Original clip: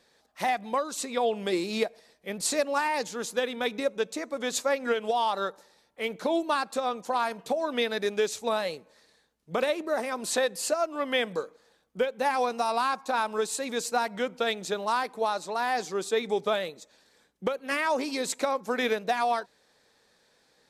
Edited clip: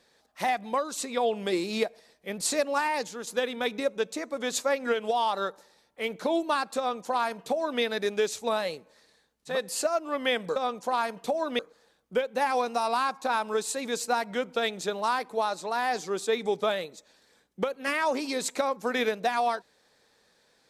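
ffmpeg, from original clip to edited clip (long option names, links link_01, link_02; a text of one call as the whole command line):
ffmpeg -i in.wav -filter_complex "[0:a]asplit=5[link_01][link_02][link_03][link_04][link_05];[link_01]atrim=end=3.27,asetpts=PTS-STARTPTS,afade=type=out:start_time=2.83:duration=0.44:curve=qsin:silence=0.473151[link_06];[link_02]atrim=start=3.27:end=9.61,asetpts=PTS-STARTPTS,afade=type=in:duration=0.004:curve=hsin:silence=0.473151[link_07];[link_03]atrim=start=10.32:end=11.432[link_08];[link_04]atrim=start=6.778:end=7.812[link_09];[link_05]atrim=start=11.428[link_10];[link_06][link_07]concat=n=2:v=0:a=1[link_11];[link_11][link_08]acrossfade=duration=0.16:curve1=tri:curve2=tri[link_12];[link_12][link_09]acrossfade=duration=0.004:curve1=hsin:curve2=hsin[link_13];[link_13][link_10]acrossfade=duration=0.004:curve1=hsin:curve2=hsin" out.wav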